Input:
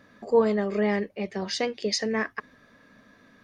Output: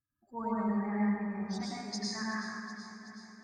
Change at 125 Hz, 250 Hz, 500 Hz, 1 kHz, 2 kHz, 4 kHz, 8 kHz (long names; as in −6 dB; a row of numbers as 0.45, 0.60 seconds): −3.0, −3.0, −17.5, −4.5, −8.0, −9.5, −7.5 decibels